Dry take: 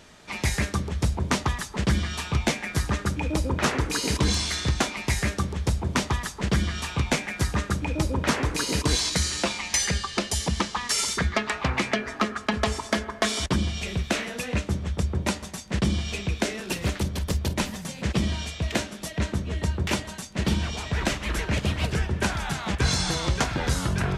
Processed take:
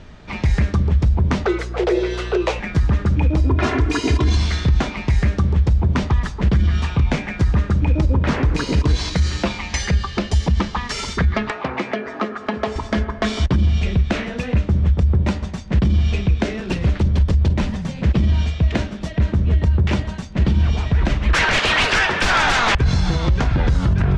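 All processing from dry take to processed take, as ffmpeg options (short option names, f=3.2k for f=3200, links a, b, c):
-filter_complex "[0:a]asettb=1/sr,asplit=3[a][b][c];[a]atrim=end=1.464[d];[b]atrim=start=1.46:end=2.6,asetpts=PTS-STARTPTS,afade=t=in:d=0.004:c=qsin,afade=t=out:st=1.136:d=0.004:c=qsin,afreqshift=290,aeval=exprs='val(0)+0.00708*(sin(2*PI*60*n/s)+sin(2*PI*2*60*n/s)/2+sin(2*PI*3*60*n/s)/3+sin(2*PI*4*60*n/s)/4+sin(2*PI*5*60*n/s)/5)':c=same[e];[c]atrim=start=2.596[f];[d][e]acrossfade=d=0.004:c1=hsin:c2=qsin[g];[g][f]acrossfade=d=0.004:c1=qsin:c2=hsin,asettb=1/sr,asplit=3[h][i][j];[h]atrim=end=3.394[k];[i]atrim=start=3.39:end=4.37,asetpts=PTS-STARTPTS,afade=t=in:d=0.004:c=qsin,afade=t=out:st=0.976:d=0.004:c=qsin,highpass=78,aecho=1:1:2.9:0.83,atrim=end_sample=43218[l];[j]atrim=start=4.366[m];[k][l]acrossfade=d=0.004:c1=hsin:c2=qsin[n];[n][m]acrossfade=d=0.004:c1=qsin:c2=hsin,asettb=1/sr,asplit=3[o][p][q];[o]atrim=end=11.504[r];[p]atrim=start=11.5:end=12.76,asetpts=PTS-STARTPTS,afade=t=in:d=0.004:c=qsin,afade=t=out:st=1.256:d=0.004:c=qsin,highpass=410,tiltshelf=f=720:g=5,acompressor=mode=upward:threshold=-29dB:ratio=2.5:attack=3.2:release=140:knee=2.83:detection=peak[s];[q]atrim=start=12.756[t];[r][s]acrossfade=d=0.004:c1=hsin:c2=qsin[u];[u][t]acrossfade=d=0.004:c1=qsin:c2=hsin,asettb=1/sr,asplit=3[v][w][x];[v]atrim=end=21.334[y];[w]atrim=start=21.33:end=22.75,asetpts=PTS-STARTPTS,afade=t=in:d=0.004:c=qsin,afade=t=out:st=1.416:d=0.004:c=qsin,highpass=1k,aeval=exprs='0.211*sin(PI/2*7.08*val(0)/0.211)':c=same[z];[x]atrim=start=22.746[aa];[y][z]acrossfade=d=0.004:c1=hsin:c2=qsin[ab];[ab][aa]acrossfade=d=0.004:c1=qsin:c2=hsin,lowpass=6.6k,aemphasis=mode=reproduction:type=bsi,alimiter=limit=-13.5dB:level=0:latency=1:release=60,volume=4.5dB"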